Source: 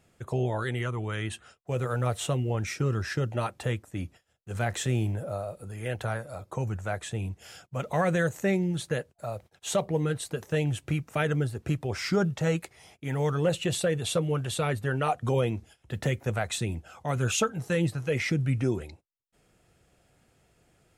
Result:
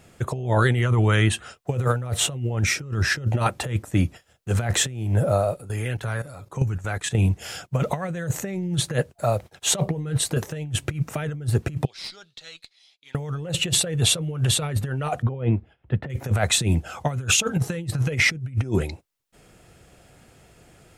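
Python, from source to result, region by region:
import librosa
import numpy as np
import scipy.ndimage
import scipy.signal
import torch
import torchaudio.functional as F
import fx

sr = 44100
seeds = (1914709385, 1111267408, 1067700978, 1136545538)

y = fx.chain(x, sr, fx.comb(ms=7.2, depth=0.34),
    fx.dynamic_eq(hz=640.0, q=1.6, threshold_db=-48.0, ratio=4.0, max_db=-7),
    fx.level_steps(step_db=13), at=(5.54, 7.15))
y = fx.chain(y, sr, fx.bandpass_q(hz=4000.0, q=6.4),
    fx.tube_stage(drive_db=36.0, bias=0.55), at=(11.85, 13.15))
y = fx.chain(y, sr, fx.air_absorb(metres=470.0),
    fx.upward_expand(threshold_db=-41.0, expansion=1.5), at=(15.22, 16.1))
y = fx.dynamic_eq(y, sr, hz=140.0, q=1.9, threshold_db=-40.0, ratio=4.0, max_db=6)
y = fx.over_compress(y, sr, threshold_db=-29.0, ratio=-0.5)
y = y * librosa.db_to_amplitude(7.5)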